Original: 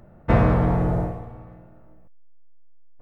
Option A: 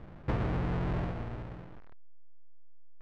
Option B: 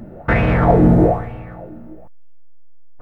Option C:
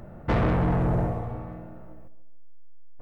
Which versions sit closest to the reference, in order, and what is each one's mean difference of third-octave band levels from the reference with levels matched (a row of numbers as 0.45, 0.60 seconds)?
B, C, A; 3.0, 4.5, 7.0 decibels